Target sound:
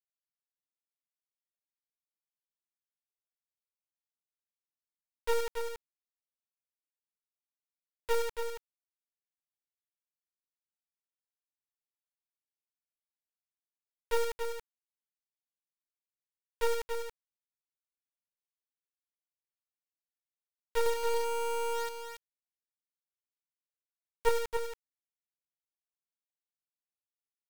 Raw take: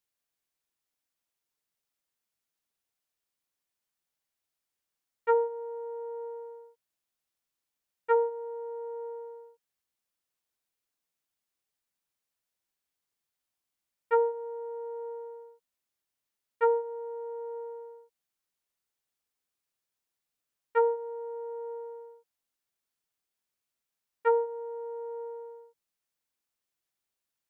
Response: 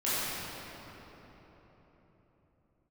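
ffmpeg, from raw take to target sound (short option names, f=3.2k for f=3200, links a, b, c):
-filter_complex "[0:a]asettb=1/sr,asplit=3[a][b][c];[a]atrim=end=20.864[d];[b]atrim=start=20.86:end=24.29,asetpts=PTS-STARTPTS,afade=t=in:d=0.004:c=qsin,afade=t=out:st=3.426:d=0.004:c=qsin,lowshelf=f=400:g=9[e];[c]atrim=start=24.286[f];[d][e]acrossfade=d=0.004:c1=hsin:c2=qsin[g];[g][f]acrossfade=d=0.004:c1=qsin:c2=hsin,acrusher=bits=3:dc=4:mix=0:aa=0.000001,aecho=1:1:279:0.473"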